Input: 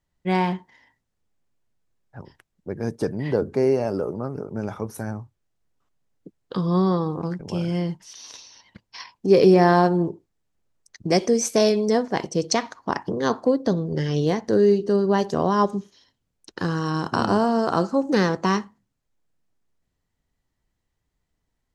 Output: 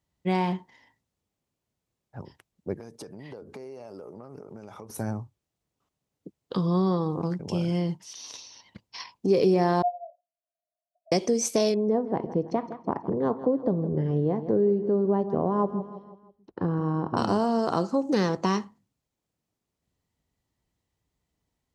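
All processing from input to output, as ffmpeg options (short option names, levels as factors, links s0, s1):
-filter_complex "[0:a]asettb=1/sr,asplit=3[s0][s1][s2];[s0]atrim=end=2.744[s3];[s1]atrim=start=2.74:end=4.9,asetpts=PTS-STARTPTS,afade=t=in:d=0.004:c=qsin,afade=t=out:st=2.156:d=0.004:c=qsin,lowshelf=f=360:g=-9.5,acompressor=threshold=0.0141:ratio=16:attack=3.2:release=140:knee=1:detection=peak[s4];[s2]atrim=start=4.896[s5];[s3][s4]acrossfade=d=0.004:c1=hsin:c2=qsin[s6];[s6][s5]acrossfade=d=0.004:c1=qsin:c2=hsin,asettb=1/sr,asplit=3[s7][s8][s9];[s7]atrim=end=9.824[s10];[s8]atrim=start=9.82:end=11.12,asetpts=PTS-STARTPTS,afade=t=in:d=0.004:c=qsin,afade=t=out:st=1.296:d=0.004:c=qsin,asuperpass=centerf=630:order=20:qfactor=3.6,aecho=1:1:2.7:0.77,atrim=end_sample=57330[s11];[s9]atrim=start=11.116[s12];[s10][s11]acrossfade=d=0.004:c1=hsin:c2=qsin[s13];[s13][s12]acrossfade=d=0.004:c1=qsin:c2=hsin,asettb=1/sr,asplit=3[s14][s15][s16];[s14]atrim=end=11.744[s17];[s15]atrim=start=11.74:end=17.17,asetpts=PTS-STARTPTS,afade=t=in:d=0.004:c=qsin,afade=t=out:st=5.426:d=0.004:c=qsin,lowpass=1000,aecho=1:1:163|326|489|652:0.178|0.08|0.036|0.0162,atrim=end_sample=239463[s18];[s16]atrim=start=17.166[s19];[s17][s18]acrossfade=d=0.004:c1=hsin:c2=qsin[s20];[s20][s19]acrossfade=d=0.004:c1=qsin:c2=hsin,highpass=58,equalizer=f=1600:t=o:w=0.63:g=-5.5,acompressor=threshold=0.0708:ratio=2"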